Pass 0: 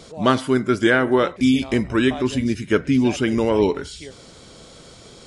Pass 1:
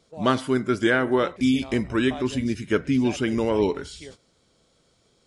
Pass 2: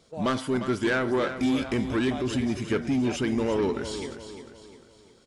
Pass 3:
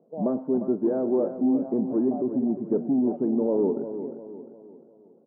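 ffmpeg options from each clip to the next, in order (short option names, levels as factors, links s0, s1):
-af "agate=range=0.158:threshold=0.0112:ratio=16:detection=peak,volume=0.631"
-filter_complex "[0:a]asplit=2[s0][s1];[s1]acompressor=threshold=0.0355:ratio=6,volume=1.06[s2];[s0][s2]amix=inputs=2:normalize=0,asoftclip=type=tanh:threshold=0.168,aecho=1:1:352|704|1056|1408|1760:0.299|0.128|0.0552|0.0237|0.0102,volume=0.668"
-af "asuperpass=centerf=360:order=8:qfactor=0.6,volume=1.33"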